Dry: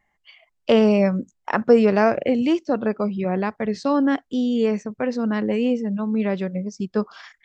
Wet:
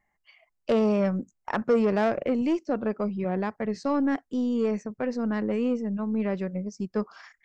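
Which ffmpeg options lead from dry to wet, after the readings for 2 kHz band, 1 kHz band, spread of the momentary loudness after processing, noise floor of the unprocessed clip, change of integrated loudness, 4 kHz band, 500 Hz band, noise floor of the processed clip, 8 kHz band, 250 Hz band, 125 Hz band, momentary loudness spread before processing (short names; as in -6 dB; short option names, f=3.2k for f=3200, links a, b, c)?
-7.0 dB, -6.0 dB, 8 LU, -72 dBFS, -6.0 dB, -10.5 dB, -6.5 dB, -76 dBFS, n/a, -5.5 dB, -5.0 dB, 10 LU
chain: -af "aeval=exprs='0.631*(cos(1*acos(clip(val(0)/0.631,-1,1)))-cos(1*PI/2))+0.0891*(cos(3*acos(clip(val(0)/0.631,-1,1)))-cos(3*PI/2))+0.0224*(cos(5*acos(clip(val(0)/0.631,-1,1)))-cos(5*PI/2))+0.00891*(cos(8*acos(clip(val(0)/0.631,-1,1)))-cos(8*PI/2))':c=same,equalizer=f=3.4k:t=o:w=0.54:g=-9.5,asoftclip=type=tanh:threshold=-13.5dB,volume=-2dB"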